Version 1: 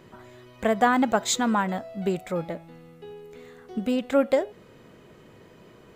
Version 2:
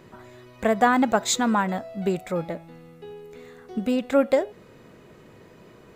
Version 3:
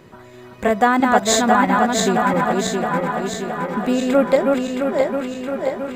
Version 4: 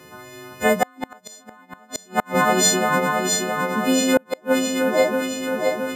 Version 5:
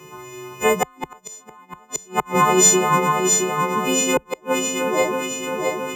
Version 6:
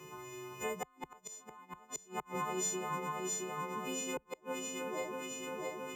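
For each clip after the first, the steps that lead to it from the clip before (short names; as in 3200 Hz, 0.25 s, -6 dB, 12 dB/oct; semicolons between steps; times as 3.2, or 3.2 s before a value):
notch 3100 Hz, Q 17; gain +1.5 dB
regenerating reverse delay 0.334 s, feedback 77%, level -2.5 dB; band-limited delay 0.682 s, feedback 51%, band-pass 1400 Hz, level -7.5 dB; gain +3.5 dB
frequency quantiser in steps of 3 st; HPF 57 Hz 24 dB/oct; flipped gate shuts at -5 dBFS, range -35 dB
ripple EQ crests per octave 0.73, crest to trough 13 dB
compressor 2:1, threshold -36 dBFS, peak gain reduction 14 dB; gain -9 dB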